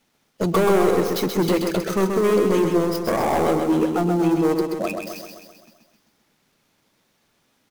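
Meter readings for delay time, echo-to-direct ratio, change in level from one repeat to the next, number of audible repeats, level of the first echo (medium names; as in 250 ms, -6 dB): 130 ms, -3.5 dB, -5.0 dB, 7, -5.0 dB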